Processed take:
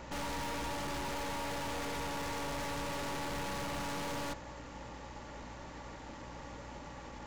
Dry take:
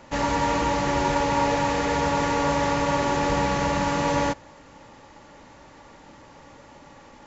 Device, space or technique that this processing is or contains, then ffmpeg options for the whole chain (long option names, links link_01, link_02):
valve amplifier with mains hum: -af "aeval=exprs='(tanh(100*val(0)+0.45)-tanh(0.45))/100':channel_layout=same,aeval=exprs='val(0)+0.002*(sin(2*PI*60*n/s)+sin(2*PI*2*60*n/s)/2+sin(2*PI*3*60*n/s)/3+sin(2*PI*4*60*n/s)/4+sin(2*PI*5*60*n/s)/5)':channel_layout=same,volume=2dB"